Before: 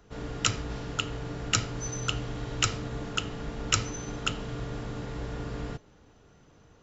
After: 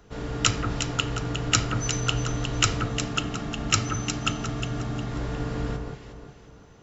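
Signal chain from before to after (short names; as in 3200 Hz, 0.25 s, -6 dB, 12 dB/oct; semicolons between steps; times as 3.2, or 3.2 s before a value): 2.86–5.12 notch comb 490 Hz; echo with dull and thin repeats by turns 0.179 s, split 1600 Hz, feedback 60%, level -3.5 dB; gain +4 dB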